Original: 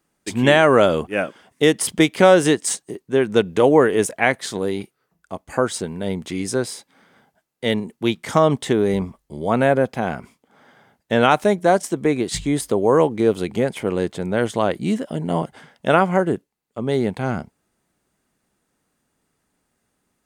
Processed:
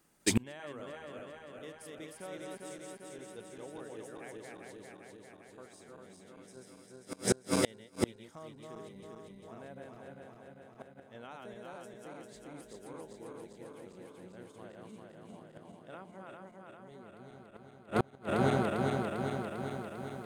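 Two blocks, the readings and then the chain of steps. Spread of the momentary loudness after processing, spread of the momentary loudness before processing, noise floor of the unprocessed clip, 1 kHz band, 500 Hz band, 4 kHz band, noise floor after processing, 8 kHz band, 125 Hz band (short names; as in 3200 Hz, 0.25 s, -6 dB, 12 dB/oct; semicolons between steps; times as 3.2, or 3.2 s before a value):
21 LU, 13 LU, -73 dBFS, -19.5 dB, -21.5 dB, -17.0 dB, -57 dBFS, -13.5 dB, -15.5 dB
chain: regenerating reverse delay 0.199 s, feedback 82%, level -1.5 dB; high shelf 8000 Hz +5 dB; flipped gate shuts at -13 dBFS, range -34 dB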